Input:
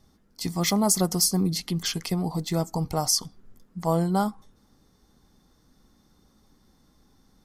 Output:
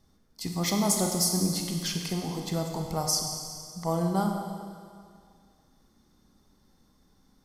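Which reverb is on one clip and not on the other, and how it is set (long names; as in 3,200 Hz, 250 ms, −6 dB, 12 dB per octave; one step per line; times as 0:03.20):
four-comb reverb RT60 2.1 s, combs from 31 ms, DRR 2.5 dB
level −4.5 dB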